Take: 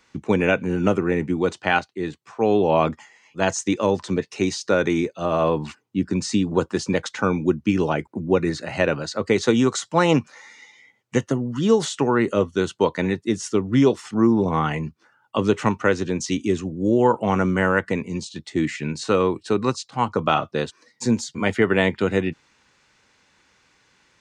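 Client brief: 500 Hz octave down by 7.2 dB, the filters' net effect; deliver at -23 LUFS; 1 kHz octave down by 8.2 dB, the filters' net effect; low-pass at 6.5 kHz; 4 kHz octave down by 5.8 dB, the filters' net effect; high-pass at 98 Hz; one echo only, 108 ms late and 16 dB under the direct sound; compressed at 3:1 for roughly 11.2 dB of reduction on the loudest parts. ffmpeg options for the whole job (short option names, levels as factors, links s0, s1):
-af "highpass=98,lowpass=6500,equalizer=f=500:t=o:g=-7.5,equalizer=f=1000:t=o:g=-8,equalizer=f=4000:t=o:g=-6.5,acompressor=threshold=0.0251:ratio=3,aecho=1:1:108:0.158,volume=3.76"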